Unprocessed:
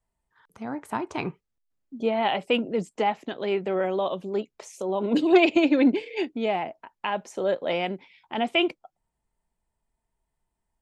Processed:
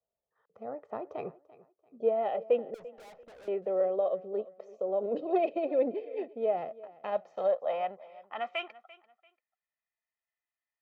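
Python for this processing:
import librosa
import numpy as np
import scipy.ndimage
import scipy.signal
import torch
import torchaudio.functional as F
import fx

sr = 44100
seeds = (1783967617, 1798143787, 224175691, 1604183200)

p1 = fx.envelope_flatten(x, sr, power=0.6, at=(6.56, 7.46), fade=0.02)
p2 = scipy.signal.sosfilt(scipy.signal.butter(6, 6600.0, 'lowpass', fs=sr, output='sos'), p1)
p3 = p2 + 0.61 * np.pad(p2, (int(1.6 * sr / 1000.0), 0))[:len(p2)]
p4 = fx.rider(p3, sr, range_db=3, speed_s=0.5)
p5 = p3 + F.gain(torch.from_numpy(p4), -2.0).numpy()
p6 = fx.cheby_harmonics(p5, sr, harmonics=(8,), levels_db=(-34,), full_scale_db=-3.0)
p7 = fx.filter_sweep_bandpass(p6, sr, from_hz=490.0, to_hz=2000.0, start_s=6.8, end_s=9.31, q=2.3)
p8 = fx.tube_stage(p7, sr, drive_db=44.0, bias=0.35, at=(2.74, 3.48))
p9 = p8 + fx.echo_feedback(p8, sr, ms=341, feedback_pct=29, wet_db=-19.5, dry=0)
y = F.gain(torch.from_numpy(p9), -6.5).numpy()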